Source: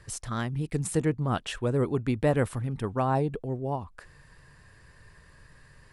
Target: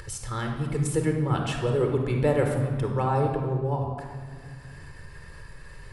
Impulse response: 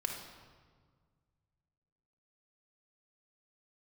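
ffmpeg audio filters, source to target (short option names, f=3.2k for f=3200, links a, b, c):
-filter_complex "[1:a]atrim=start_sample=2205[a];[0:a][a]afir=irnorm=-1:irlink=0,acompressor=mode=upward:threshold=-34dB:ratio=2.5"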